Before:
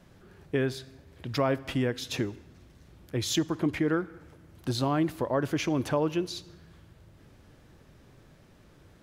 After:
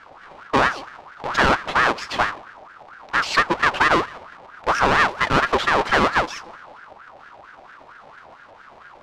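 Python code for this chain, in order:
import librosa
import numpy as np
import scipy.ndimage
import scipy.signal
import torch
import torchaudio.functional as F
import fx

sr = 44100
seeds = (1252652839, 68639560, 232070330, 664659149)

y = fx.halfwave_hold(x, sr)
y = scipy.signal.sosfilt(scipy.signal.butter(2, 3800.0, 'lowpass', fs=sr, output='sos'), y)
y = fx.ring_lfo(y, sr, carrier_hz=1100.0, swing_pct=40, hz=4.4)
y = y * librosa.db_to_amplitude(8.5)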